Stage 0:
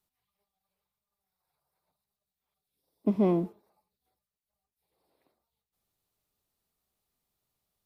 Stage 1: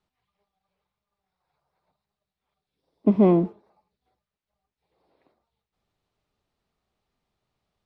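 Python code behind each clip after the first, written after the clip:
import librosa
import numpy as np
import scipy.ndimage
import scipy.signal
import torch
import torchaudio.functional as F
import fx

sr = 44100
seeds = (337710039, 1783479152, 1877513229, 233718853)

y = scipy.signal.sosfilt(scipy.signal.bessel(2, 3000.0, 'lowpass', norm='mag', fs=sr, output='sos'), x)
y = y * 10.0 ** (7.5 / 20.0)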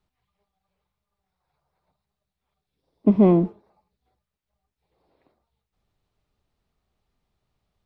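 y = fx.low_shelf(x, sr, hz=110.0, db=10.0)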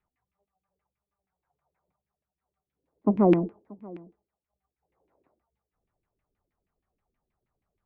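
y = fx.cheby_harmonics(x, sr, harmonics=(3,), levels_db=(-24,), full_scale_db=-5.5)
y = fx.filter_lfo_lowpass(y, sr, shape='saw_down', hz=6.3, low_hz=270.0, high_hz=2500.0, q=3.5)
y = y + 10.0 ** (-22.5 / 20.0) * np.pad(y, (int(632 * sr / 1000.0), 0))[:len(y)]
y = y * 10.0 ** (-6.0 / 20.0)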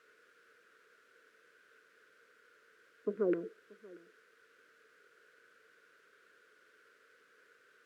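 y = fx.quant_dither(x, sr, seeds[0], bits=8, dither='triangular')
y = fx.double_bandpass(y, sr, hz=820.0, octaves=1.7)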